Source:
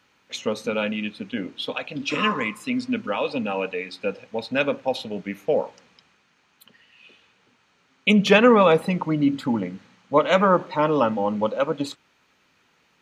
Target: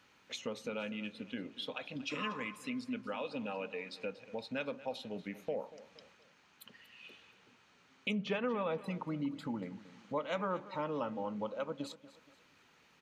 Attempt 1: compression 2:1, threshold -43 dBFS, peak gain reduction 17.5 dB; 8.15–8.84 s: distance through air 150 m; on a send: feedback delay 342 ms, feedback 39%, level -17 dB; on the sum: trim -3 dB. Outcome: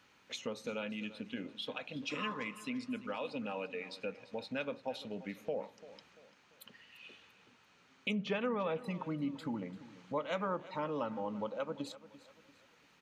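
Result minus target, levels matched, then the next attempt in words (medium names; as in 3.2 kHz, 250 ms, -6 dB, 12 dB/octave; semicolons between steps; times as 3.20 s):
echo 106 ms late
compression 2:1, threshold -43 dBFS, peak gain reduction 17.5 dB; 8.15–8.84 s: distance through air 150 m; on a send: feedback delay 236 ms, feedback 39%, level -17 dB; on the sum: trim -3 dB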